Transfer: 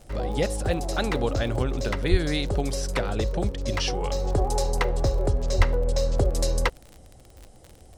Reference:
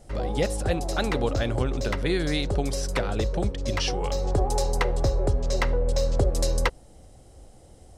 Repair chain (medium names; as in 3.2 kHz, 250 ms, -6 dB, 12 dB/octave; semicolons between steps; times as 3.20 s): de-click; de-plosive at 2.10/5.57 s